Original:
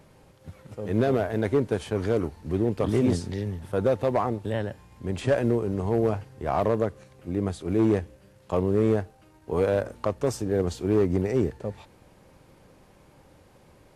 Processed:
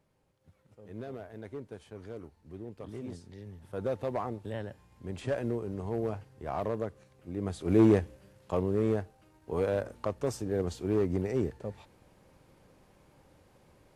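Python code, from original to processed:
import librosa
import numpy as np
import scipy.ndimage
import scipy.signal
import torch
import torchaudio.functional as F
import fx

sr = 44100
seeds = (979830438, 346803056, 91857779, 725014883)

y = fx.gain(x, sr, db=fx.line((3.24, -18.5), (3.91, -9.0), (7.35, -9.0), (7.76, 1.0), (8.73, -6.0)))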